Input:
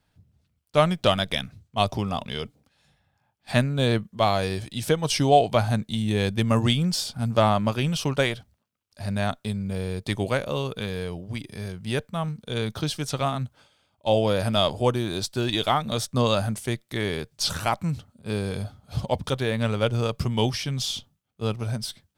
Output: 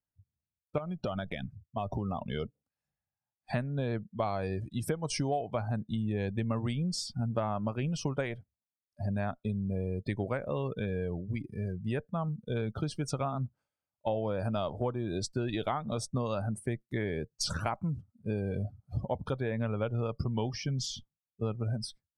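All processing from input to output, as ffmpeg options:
ffmpeg -i in.wav -filter_complex "[0:a]asettb=1/sr,asplit=3[link_01][link_02][link_03];[link_01]atrim=end=0.784[link_04];[link_02]atrim=start=0.78:end=2.23,asetpts=PTS-STARTPTS,afade=type=in:duration=0.004:curve=qsin,afade=type=out:start_time=1.446:duration=0.004:curve=qsin,bandreject=frequency=7100:width=26,asoftclip=type=hard:threshold=-10.5dB,acompressor=threshold=-27dB:ratio=5:attack=3.2:release=140:knee=1:detection=peak[link_05];[link_03]atrim=start=2.226[link_06];[link_04][link_05]acrossfade=duration=0.004:curve1=hsin:curve2=qsin[link_07];[link_07][link_06]acrossfade=duration=0.004:curve1=qsin:curve2=hsin,afftdn=noise_reduction=26:noise_floor=-35,equalizer=frequency=3500:width_type=o:width=0.66:gain=-12.5,acompressor=threshold=-29dB:ratio=6" out.wav

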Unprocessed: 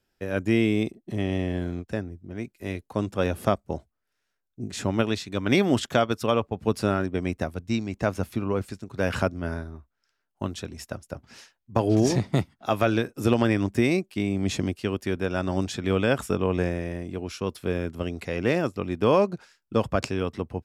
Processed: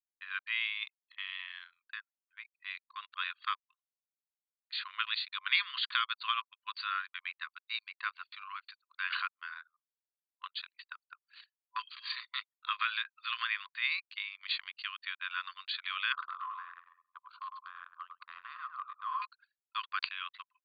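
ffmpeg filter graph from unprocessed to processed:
ffmpeg -i in.wav -filter_complex "[0:a]asettb=1/sr,asplit=3[link_01][link_02][link_03];[link_01]atrim=end=16.124[link_04];[link_02]atrim=start=16.12:end=19.22,asetpts=PTS-STARTPTS,afade=type=in:duration=0.004:curve=qsin,afade=type=out:start_time=3.096:duration=0.004:curve=qsin,highshelf=frequency=1600:width_type=q:width=3:gain=-10.5,acompressor=threshold=-23dB:ratio=3:attack=3.2:release=140:knee=1:detection=peak,asplit=2[link_05][link_06];[link_06]adelay=103,lowpass=frequency=4300:poles=1,volume=-5dB,asplit=2[link_07][link_08];[link_08]adelay=103,lowpass=frequency=4300:poles=1,volume=0.38,asplit=2[link_09][link_10];[link_10]adelay=103,lowpass=frequency=4300:poles=1,volume=0.38,asplit=2[link_11][link_12];[link_12]adelay=103,lowpass=frequency=4300:poles=1,volume=0.38,asplit=2[link_13][link_14];[link_14]adelay=103,lowpass=frequency=4300:poles=1,volume=0.38[link_15];[link_05][link_07][link_09][link_11][link_13][link_15]amix=inputs=6:normalize=0,atrim=end_sample=136710[link_16];[link_03]atrim=start=19.216[link_17];[link_04][link_16]acrossfade=duration=0.004:curve1=hsin:curve2=qsin[link_18];[link_18][link_17]acrossfade=duration=0.004:curve1=qsin:curve2=hsin,afftfilt=real='re*between(b*sr/4096,1000,4700)':imag='im*between(b*sr/4096,1000,4700)':win_size=4096:overlap=0.75,aemphasis=mode=production:type=riaa,anlmdn=0.0631,volume=-4dB" out.wav

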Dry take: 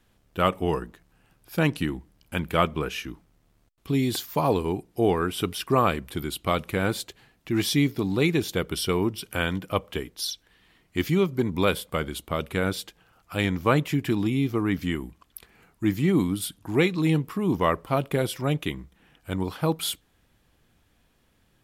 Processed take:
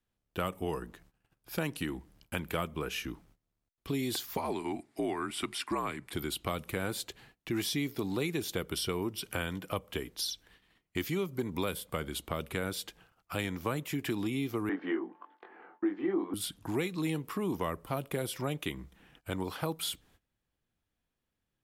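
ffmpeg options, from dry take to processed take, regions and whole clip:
ffmpeg -i in.wav -filter_complex "[0:a]asettb=1/sr,asplit=3[link_01][link_02][link_03];[link_01]atrim=end=4.374[link_04];[link_02]atrim=start=4.37:end=6.13,asetpts=PTS-STARTPTS,afade=type=in:duration=0.004:curve=qsin,afade=type=out:start_time=1.756:duration=0.004:curve=qsin,highpass=370,equalizer=frequency=580:width_type=q:width=4:gain=-8,equalizer=frequency=2100:width_type=q:width=4:gain=6,equalizer=frequency=3000:width_type=q:width=4:gain=-4,equalizer=frequency=6000:width_type=q:width=4:gain=-5,lowpass=frequency=9900:width=0.5412,lowpass=frequency=9900:width=1.3066,afreqshift=-60[link_05];[link_03]atrim=start=6.126[link_06];[link_04][link_05]acrossfade=duration=0.004:curve1=hsin:curve2=qsin[link_07];[link_07][link_06]acrossfade=duration=0.004:curve1=qsin:curve2=hsin,asettb=1/sr,asplit=3[link_08][link_09][link_10];[link_08]atrim=end=14.694[link_11];[link_09]atrim=start=14.69:end=16.34,asetpts=PTS-STARTPTS,afade=type=in:duration=0.004:curve=qsin,afade=type=out:start_time=1.646:duration=0.004:curve=qsin,highpass=frequency=290:width=0.5412,highpass=frequency=290:width=1.3066,equalizer=frequency=340:width_type=q:width=4:gain=8,equalizer=frequency=530:width_type=q:width=4:gain=3,equalizer=frequency=760:width_type=q:width=4:gain=8,equalizer=frequency=1100:width_type=q:width=4:gain=4,equalizer=frequency=1600:width_type=q:width=4:gain=4,equalizer=frequency=2400:width_type=q:width=4:gain=-7,lowpass=frequency=2400:width=0.5412,lowpass=frequency=2400:width=1.3066,aeval=exprs='val(0)+0.00316*sin(2*PI*880*n/s)':channel_layout=same,asplit=2[link_12][link_13];[link_13]adelay=21,volume=-2.5dB[link_14];[link_12][link_14]amix=inputs=2:normalize=0,atrim=end_sample=72765[link_15];[link_10]atrim=start=16.336[link_16];[link_11][link_15]acrossfade=duration=0.004:curve1=hsin:curve2=qsin[link_17];[link_17][link_16]acrossfade=duration=0.004:curve1=qsin:curve2=hsin,agate=range=-20dB:threshold=-58dB:ratio=16:detection=peak,acrossover=split=300|7300[link_18][link_19][link_20];[link_18]acompressor=threshold=-39dB:ratio=4[link_21];[link_19]acompressor=threshold=-34dB:ratio=4[link_22];[link_20]acompressor=threshold=-41dB:ratio=4[link_23];[link_21][link_22][link_23]amix=inputs=3:normalize=0" out.wav

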